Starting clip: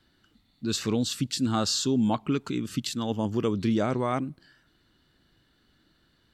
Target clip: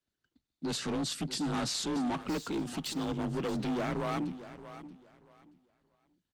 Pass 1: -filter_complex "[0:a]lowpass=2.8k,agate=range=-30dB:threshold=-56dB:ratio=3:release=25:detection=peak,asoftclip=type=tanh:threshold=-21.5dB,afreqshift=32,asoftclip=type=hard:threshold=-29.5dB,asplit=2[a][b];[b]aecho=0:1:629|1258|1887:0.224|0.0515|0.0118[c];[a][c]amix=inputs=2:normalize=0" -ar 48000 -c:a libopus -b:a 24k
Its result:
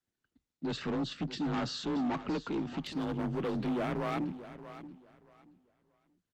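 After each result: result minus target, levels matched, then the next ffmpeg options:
8000 Hz band -12.5 dB; soft clip: distortion +13 dB
-filter_complex "[0:a]lowpass=10k,agate=range=-30dB:threshold=-56dB:ratio=3:release=25:detection=peak,asoftclip=type=tanh:threshold=-21.5dB,afreqshift=32,asoftclip=type=hard:threshold=-29.5dB,asplit=2[a][b];[b]aecho=0:1:629|1258|1887:0.224|0.0515|0.0118[c];[a][c]amix=inputs=2:normalize=0" -ar 48000 -c:a libopus -b:a 24k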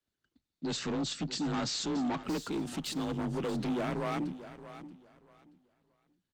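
soft clip: distortion +13 dB
-filter_complex "[0:a]lowpass=10k,agate=range=-30dB:threshold=-56dB:ratio=3:release=25:detection=peak,asoftclip=type=tanh:threshold=-13dB,afreqshift=32,asoftclip=type=hard:threshold=-29.5dB,asplit=2[a][b];[b]aecho=0:1:629|1258|1887:0.224|0.0515|0.0118[c];[a][c]amix=inputs=2:normalize=0" -ar 48000 -c:a libopus -b:a 24k

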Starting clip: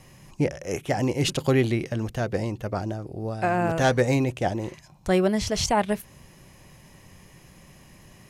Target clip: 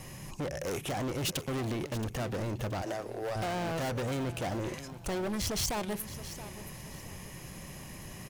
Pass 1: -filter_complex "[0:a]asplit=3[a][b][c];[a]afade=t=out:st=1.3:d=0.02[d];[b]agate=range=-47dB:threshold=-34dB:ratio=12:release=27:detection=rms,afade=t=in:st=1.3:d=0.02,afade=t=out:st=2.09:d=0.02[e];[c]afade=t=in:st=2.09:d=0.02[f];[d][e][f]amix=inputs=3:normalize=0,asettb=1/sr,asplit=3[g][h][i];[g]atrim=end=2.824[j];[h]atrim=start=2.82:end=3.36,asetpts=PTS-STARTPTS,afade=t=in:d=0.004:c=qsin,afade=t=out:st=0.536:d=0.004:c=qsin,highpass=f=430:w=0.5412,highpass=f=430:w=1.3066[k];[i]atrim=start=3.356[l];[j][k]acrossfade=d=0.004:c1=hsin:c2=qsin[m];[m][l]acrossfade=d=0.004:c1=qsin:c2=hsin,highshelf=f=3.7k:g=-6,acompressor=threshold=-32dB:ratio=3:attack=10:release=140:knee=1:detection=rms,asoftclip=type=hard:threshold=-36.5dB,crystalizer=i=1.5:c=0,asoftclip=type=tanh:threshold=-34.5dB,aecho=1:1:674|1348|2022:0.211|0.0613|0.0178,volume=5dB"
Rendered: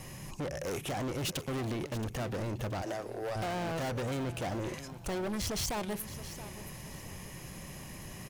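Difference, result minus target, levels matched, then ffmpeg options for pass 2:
soft clip: distortion +11 dB
-filter_complex "[0:a]asplit=3[a][b][c];[a]afade=t=out:st=1.3:d=0.02[d];[b]agate=range=-47dB:threshold=-34dB:ratio=12:release=27:detection=rms,afade=t=in:st=1.3:d=0.02,afade=t=out:st=2.09:d=0.02[e];[c]afade=t=in:st=2.09:d=0.02[f];[d][e][f]amix=inputs=3:normalize=0,asettb=1/sr,asplit=3[g][h][i];[g]atrim=end=2.824[j];[h]atrim=start=2.82:end=3.36,asetpts=PTS-STARTPTS,afade=t=in:d=0.004:c=qsin,afade=t=out:st=0.536:d=0.004:c=qsin,highpass=f=430:w=0.5412,highpass=f=430:w=1.3066[k];[i]atrim=start=3.356[l];[j][k]acrossfade=d=0.004:c1=hsin:c2=qsin[m];[m][l]acrossfade=d=0.004:c1=qsin:c2=hsin,highshelf=f=3.7k:g=-6,acompressor=threshold=-32dB:ratio=3:attack=10:release=140:knee=1:detection=rms,asoftclip=type=hard:threshold=-36.5dB,crystalizer=i=1.5:c=0,asoftclip=type=tanh:threshold=-26dB,aecho=1:1:674|1348|2022:0.211|0.0613|0.0178,volume=5dB"

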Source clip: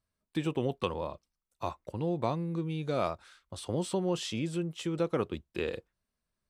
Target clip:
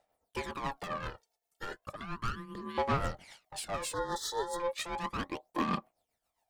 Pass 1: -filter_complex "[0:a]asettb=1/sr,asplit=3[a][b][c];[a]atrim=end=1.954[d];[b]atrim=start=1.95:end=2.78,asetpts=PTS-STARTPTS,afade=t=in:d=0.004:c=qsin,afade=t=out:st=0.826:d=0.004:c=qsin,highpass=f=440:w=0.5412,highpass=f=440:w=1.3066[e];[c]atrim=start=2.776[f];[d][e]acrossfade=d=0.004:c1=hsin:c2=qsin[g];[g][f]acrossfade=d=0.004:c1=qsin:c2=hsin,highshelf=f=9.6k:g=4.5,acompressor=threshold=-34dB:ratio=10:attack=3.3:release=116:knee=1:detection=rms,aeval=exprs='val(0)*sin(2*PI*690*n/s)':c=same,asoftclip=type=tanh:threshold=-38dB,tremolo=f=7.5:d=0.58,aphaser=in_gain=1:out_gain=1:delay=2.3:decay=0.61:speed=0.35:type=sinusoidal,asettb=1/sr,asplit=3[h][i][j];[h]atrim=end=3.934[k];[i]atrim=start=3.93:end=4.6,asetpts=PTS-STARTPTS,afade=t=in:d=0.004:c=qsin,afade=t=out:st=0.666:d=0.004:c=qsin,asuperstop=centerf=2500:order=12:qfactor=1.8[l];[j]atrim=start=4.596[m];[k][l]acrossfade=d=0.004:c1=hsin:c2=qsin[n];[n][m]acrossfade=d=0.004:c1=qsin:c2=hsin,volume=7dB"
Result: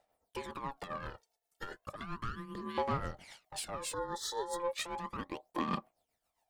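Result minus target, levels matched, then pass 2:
compressor: peak gain reduction +13.5 dB
-filter_complex "[0:a]asettb=1/sr,asplit=3[a][b][c];[a]atrim=end=1.954[d];[b]atrim=start=1.95:end=2.78,asetpts=PTS-STARTPTS,afade=t=in:d=0.004:c=qsin,afade=t=out:st=0.826:d=0.004:c=qsin,highpass=f=440:w=0.5412,highpass=f=440:w=1.3066[e];[c]atrim=start=2.776[f];[d][e]acrossfade=d=0.004:c1=hsin:c2=qsin[g];[g][f]acrossfade=d=0.004:c1=qsin:c2=hsin,highshelf=f=9.6k:g=4.5,aeval=exprs='val(0)*sin(2*PI*690*n/s)':c=same,asoftclip=type=tanh:threshold=-38dB,tremolo=f=7.5:d=0.58,aphaser=in_gain=1:out_gain=1:delay=2.3:decay=0.61:speed=0.35:type=sinusoidal,asettb=1/sr,asplit=3[h][i][j];[h]atrim=end=3.934[k];[i]atrim=start=3.93:end=4.6,asetpts=PTS-STARTPTS,afade=t=in:d=0.004:c=qsin,afade=t=out:st=0.666:d=0.004:c=qsin,asuperstop=centerf=2500:order=12:qfactor=1.8[l];[j]atrim=start=4.596[m];[k][l]acrossfade=d=0.004:c1=hsin:c2=qsin[n];[n][m]acrossfade=d=0.004:c1=qsin:c2=hsin,volume=7dB"

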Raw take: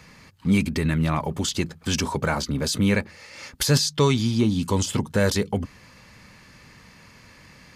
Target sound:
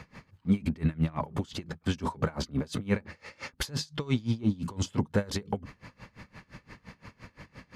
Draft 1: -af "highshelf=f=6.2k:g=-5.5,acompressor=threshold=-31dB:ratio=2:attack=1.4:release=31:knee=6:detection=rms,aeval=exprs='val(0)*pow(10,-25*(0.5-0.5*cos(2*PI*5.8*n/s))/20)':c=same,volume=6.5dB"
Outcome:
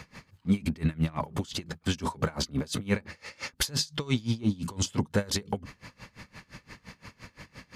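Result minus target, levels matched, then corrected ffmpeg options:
8000 Hz band +7.0 dB
-af "highshelf=f=6.2k:g=-5.5,acompressor=threshold=-31dB:ratio=2:attack=1.4:release=31:knee=6:detection=rms,highshelf=f=3.1k:g=-9.5,aeval=exprs='val(0)*pow(10,-25*(0.5-0.5*cos(2*PI*5.8*n/s))/20)':c=same,volume=6.5dB"

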